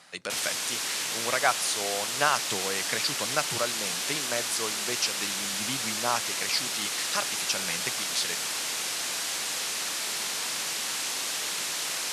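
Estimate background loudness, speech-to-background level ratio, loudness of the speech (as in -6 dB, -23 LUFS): -28.5 LUFS, -3.0 dB, -31.5 LUFS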